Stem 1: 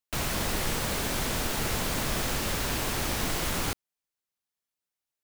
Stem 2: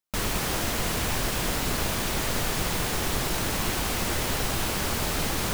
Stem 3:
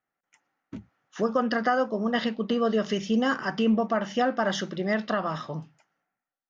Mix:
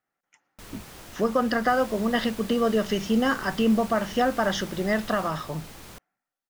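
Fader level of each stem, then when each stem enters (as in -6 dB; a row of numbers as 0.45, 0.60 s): -15.0, -17.0, +1.5 dB; 1.55, 0.45, 0.00 s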